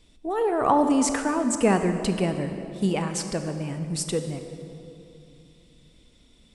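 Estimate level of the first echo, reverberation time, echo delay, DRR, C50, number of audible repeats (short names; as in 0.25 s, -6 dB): none, 2.7 s, none, 7.0 dB, 7.5 dB, none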